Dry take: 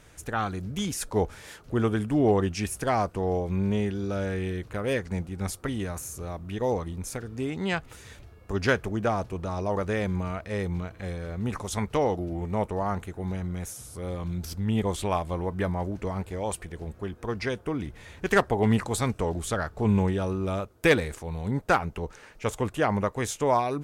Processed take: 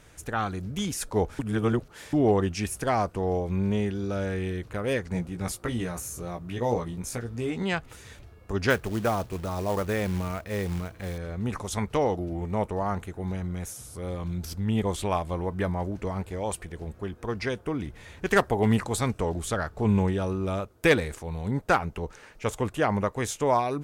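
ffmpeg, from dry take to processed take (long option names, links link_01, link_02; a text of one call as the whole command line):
ffmpeg -i in.wav -filter_complex "[0:a]asettb=1/sr,asplit=3[link_01][link_02][link_03];[link_01]atrim=end=5.124[link_04];[link_02]atrim=start=5.12:end=7.63,asetpts=PTS-STARTPTS,afade=type=in:duration=0.004:curve=qsin,afade=type=out:start_time=2.506:duration=0.004:curve=qsin,asplit=2[link_05][link_06];[link_06]adelay=17,volume=-4.5dB[link_07];[link_05][link_07]amix=inputs=2:normalize=0,atrim=end_sample=110691[link_08];[link_03]atrim=start=7.626[link_09];[link_04][link_08]acrossfade=duration=0.004:curve1=hsin:curve2=qsin[link_10];[link_10][link_09]acrossfade=duration=0.004:curve1=qsin:curve2=hsin,asettb=1/sr,asplit=3[link_11][link_12][link_13];[link_11]atrim=end=8.704[link_14];[link_12]atrim=start=8.7:end=11.18,asetpts=PTS-STARTPTS,afade=type=in:duration=0.004:curve=qsin,afade=type=out:start_time=2.476:duration=0.004:curve=qsin,acrusher=bits=4:mode=log:mix=0:aa=0.000001[link_15];[link_13]atrim=start=11.176[link_16];[link_14][link_15]acrossfade=duration=0.004:curve1=hsin:curve2=qsin[link_17];[link_17][link_16]acrossfade=duration=0.004:curve1=qsin:curve2=hsin,asettb=1/sr,asplit=3[link_18][link_19][link_20];[link_18]atrim=end=18.364[link_21];[link_19]atrim=start=18.36:end=18.79,asetpts=PTS-STARTPTS,afade=type=in:duration=0.004:curve=qsin,afade=type=out:start_time=0.426:duration=0.004:curve=qsin,highshelf=frequency=9900:gain=7.5[link_22];[link_20]atrim=start=18.786[link_23];[link_21][link_22]acrossfade=duration=0.004:curve1=hsin:curve2=qsin[link_24];[link_24][link_23]acrossfade=duration=0.004:curve1=qsin:curve2=hsin,asplit=3[link_25][link_26][link_27];[link_25]atrim=end=1.392[link_28];[link_26]atrim=start=1.388:end=2.132,asetpts=PTS-STARTPTS,areverse[link_29];[link_27]atrim=start=2.128[link_30];[link_28][link_29]acrossfade=duration=0.004:curve1=hsin:curve2=hsin[link_31];[link_31][link_30]acrossfade=duration=0.004:curve1=hsin:curve2=hsin" out.wav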